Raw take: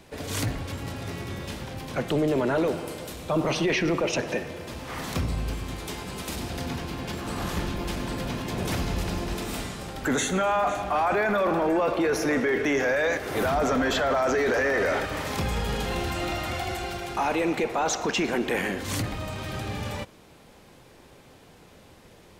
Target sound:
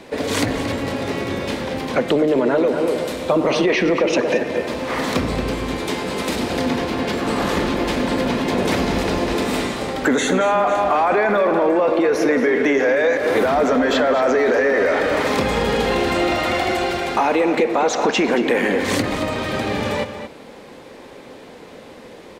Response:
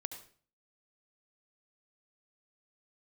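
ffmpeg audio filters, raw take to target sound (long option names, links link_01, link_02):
-filter_complex "[0:a]equalizer=frequency=250:width_type=o:width=1:gain=11,equalizer=frequency=500:width_type=o:width=1:gain=12,equalizer=frequency=1000:width_type=o:width=1:gain=7,equalizer=frequency=2000:width_type=o:width=1:gain=9,equalizer=frequency=4000:width_type=o:width=1:gain=7,equalizer=frequency=8000:width_type=o:width=1:gain=4,asplit=2[link_01][link_02];[link_02]adelay=227.4,volume=-9dB,highshelf=frequency=4000:gain=-5.12[link_03];[link_01][link_03]amix=inputs=2:normalize=0,acompressor=threshold=-14dB:ratio=6"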